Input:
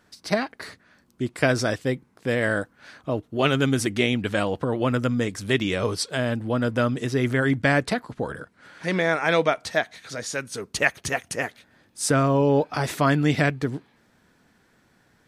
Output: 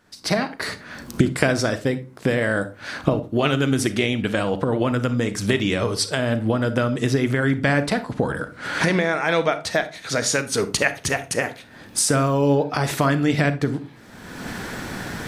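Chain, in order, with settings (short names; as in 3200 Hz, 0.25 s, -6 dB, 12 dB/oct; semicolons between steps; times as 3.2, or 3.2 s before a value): recorder AGC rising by 34 dB/s; 12.12–12.54 high shelf 8100 Hz -> 4400 Hz +12 dB; reverb, pre-delay 35 ms, DRR 11.5 dB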